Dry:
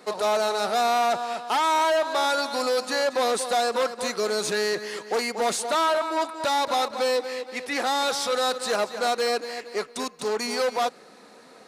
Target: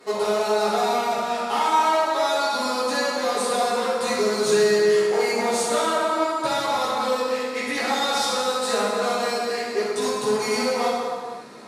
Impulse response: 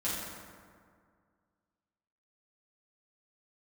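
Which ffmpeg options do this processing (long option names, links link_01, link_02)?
-filter_complex "[0:a]acompressor=threshold=-26dB:ratio=6[link_01];[1:a]atrim=start_sample=2205,afade=type=out:start_time=0.45:duration=0.01,atrim=end_sample=20286,asetrate=30429,aresample=44100[link_02];[link_01][link_02]afir=irnorm=-1:irlink=0,volume=-1.5dB"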